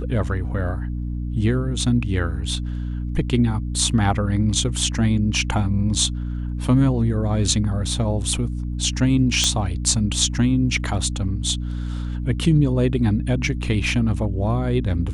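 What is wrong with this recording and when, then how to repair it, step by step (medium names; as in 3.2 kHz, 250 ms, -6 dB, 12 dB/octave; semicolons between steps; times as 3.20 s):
hum 60 Hz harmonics 5 -26 dBFS
9.44 s: pop -4 dBFS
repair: de-click; de-hum 60 Hz, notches 5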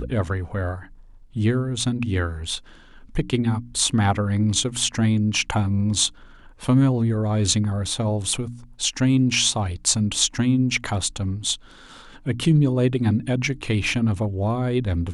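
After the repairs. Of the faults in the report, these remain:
nothing left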